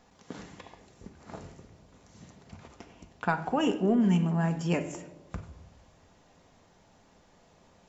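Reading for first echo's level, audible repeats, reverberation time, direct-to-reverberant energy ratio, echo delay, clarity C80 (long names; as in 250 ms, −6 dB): no echo audible, no echo audible, 1.1 s, 5.5 dB, no echo audible, 14.5 dB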